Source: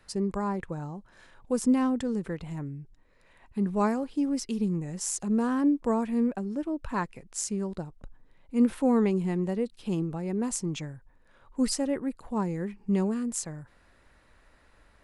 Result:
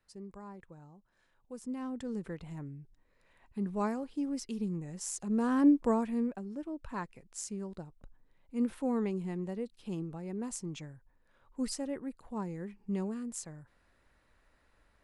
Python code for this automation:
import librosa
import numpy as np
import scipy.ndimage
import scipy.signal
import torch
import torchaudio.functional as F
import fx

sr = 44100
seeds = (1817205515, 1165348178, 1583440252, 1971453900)

y = fx.gain(x, sr, db=fx.line((1.63, -17.5), (2.15, -7.0), (5.22, -7.0), (5.69, 1.0), (6.38, -8.5)))